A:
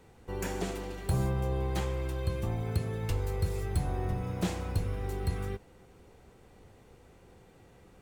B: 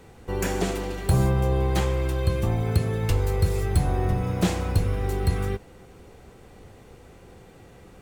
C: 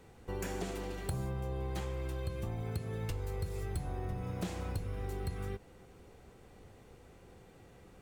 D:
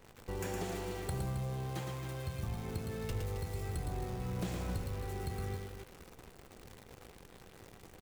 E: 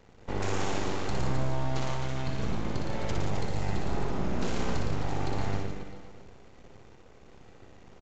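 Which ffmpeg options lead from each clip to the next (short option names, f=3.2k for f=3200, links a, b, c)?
-af "bandreject=f=920:w=25,volume=8.5dB"
-af "acompressor=threshold=-26dB:ratio=4,volume=-8.5dB"
-filter_complex "[0:a]aecho=1:1:113.7|268.2:0.562|0.316,asplit=2[a][b];[b]asoftclip=type=tanh:threshold=-39.5dB,volume=-9dB[c];[a][c]amix=inputs=2:normalize=0,acrusher=bits=9:dc=4:mix=0:aa=0.000001,volume=-2.5dB"
-filter_complex "[0:a]aeval=exprs='0.0531*(cos(1*acos(clip(val(0)/0.0531,-1,1)))-cos(1*PI/2))+0.0266*(cos(6*acos(clip(val(0)/0.0531,-1,1)))-cos(6*PI/2))':c=same,asplit=2[a][b];[b]aecho=0:1:60|144|261.6|426.2|656.7:0.631|0.398|0.251|0.158|0.1[c];[a][c]amix=inputs=2:normalize=0,aresample=16000,aresample=44100"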